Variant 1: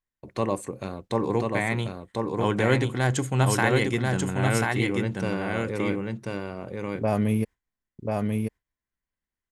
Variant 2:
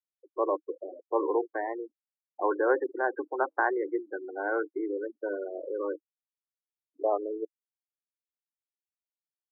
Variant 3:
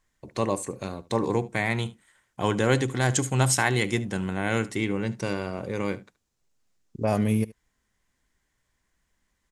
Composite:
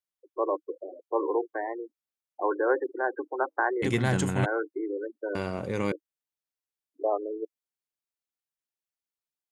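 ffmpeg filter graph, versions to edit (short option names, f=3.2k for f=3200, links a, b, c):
-filter_complex "[1:a]asplit=3[a][b][c];[a]atrim=end=3.84[d];[0:a]atrim=start=3.82:end=4.46[e];[b]atrim=start=4.44:end=5.352[f];[2:a]atrim=start=5.348:end=5.922[g];[c]atrim=start=5.918[h];[d][e]acrossfade=d=0.02:c1=tri:c2=tri[i];[i][f]acrossfade=d=0.02:c1=tri:c2=tri[j];[j][g]acrossfade=d=0.004:c1=hsin:c2=hsin[k];[k][h]acrossfade=d=0.004:c1=hsin:c2=hsin"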